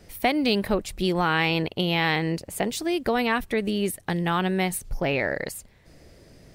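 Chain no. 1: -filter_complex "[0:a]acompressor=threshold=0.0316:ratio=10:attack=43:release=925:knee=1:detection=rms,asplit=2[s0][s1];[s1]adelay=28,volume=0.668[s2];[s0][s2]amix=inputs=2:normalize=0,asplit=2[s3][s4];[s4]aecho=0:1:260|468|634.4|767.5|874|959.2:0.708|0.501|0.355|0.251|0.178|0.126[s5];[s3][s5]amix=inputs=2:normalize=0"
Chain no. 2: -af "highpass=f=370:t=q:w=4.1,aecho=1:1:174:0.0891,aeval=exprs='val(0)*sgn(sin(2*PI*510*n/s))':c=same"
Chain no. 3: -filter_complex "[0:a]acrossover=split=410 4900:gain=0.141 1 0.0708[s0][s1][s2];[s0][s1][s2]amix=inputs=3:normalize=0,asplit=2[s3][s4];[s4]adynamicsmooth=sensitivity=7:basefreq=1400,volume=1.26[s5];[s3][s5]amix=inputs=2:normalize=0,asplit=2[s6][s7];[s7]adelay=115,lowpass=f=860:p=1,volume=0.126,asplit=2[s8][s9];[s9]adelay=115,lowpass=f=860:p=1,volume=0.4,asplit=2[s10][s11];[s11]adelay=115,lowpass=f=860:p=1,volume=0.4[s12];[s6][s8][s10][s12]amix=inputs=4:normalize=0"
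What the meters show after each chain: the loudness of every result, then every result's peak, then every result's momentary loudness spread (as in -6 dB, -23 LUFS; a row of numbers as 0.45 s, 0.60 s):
-31.5 LUFS, -19.5 LUFS, -21.5 LUFS; -14.5 dBFS, -5.5 dBFS, -2.5 dBFS; 4 LU, 7 LU, 9 LU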